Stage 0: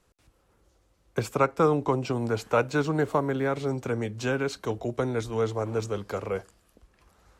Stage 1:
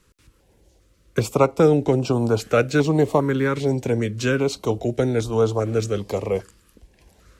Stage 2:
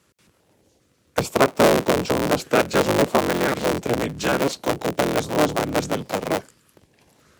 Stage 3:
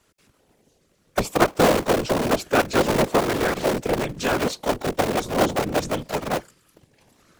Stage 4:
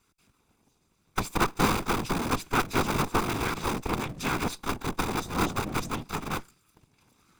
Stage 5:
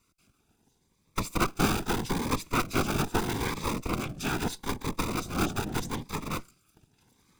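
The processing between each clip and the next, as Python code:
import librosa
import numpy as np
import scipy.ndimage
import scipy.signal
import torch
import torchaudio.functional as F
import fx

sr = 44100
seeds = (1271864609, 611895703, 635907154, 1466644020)

y1 = fx.filter_held_notch(x, sr, hz=2.5, low_hz=710.0, high_hz=1900.0)
y1 = F.gain(torch.from_numpy(y1), 8.0).numpy()
y2 = fx.cycle_switch(y1, sr, every=3, mode='inverted')
y2 = scipy.signal.sosfilt(scipy.signal.butter(2, 130.0, 'highpass', fs=sr, output='sos'), y2)
y3 = fx.whisperise(y2, sr, seeds[0])
y3 = F.gain(torch.from_numpy(y3), -1.0).numpy()
y4 = fx.lower_of_two(y3, sr, delay_ms=0.81)
y4 = F.gain(torch.from_numpy(y4), -4.5).numpy()
y5 = fx.notch_cascade(y4, sr, direction='rising', hz=0.79)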